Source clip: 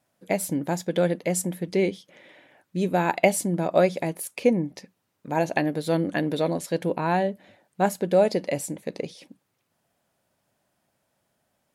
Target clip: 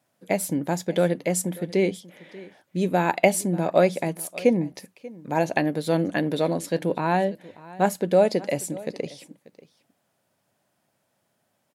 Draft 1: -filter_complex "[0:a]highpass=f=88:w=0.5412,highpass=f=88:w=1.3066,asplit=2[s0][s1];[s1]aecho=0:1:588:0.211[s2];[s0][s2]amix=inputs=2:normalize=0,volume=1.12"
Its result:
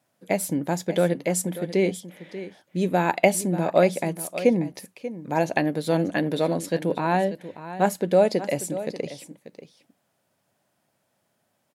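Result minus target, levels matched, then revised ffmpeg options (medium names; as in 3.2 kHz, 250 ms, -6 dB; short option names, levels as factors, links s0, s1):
echo-to-direct +6.5 dB
-filter_complex "[0:a]highpass=f=88:w=0.5412,highpass=f=88:w=1.3066,asplit=2[s0][s1];[s1]aecho=0:1:588:0.1[s2];[s0][s2]amix=inputs=2:normalize=0,volume=1.12"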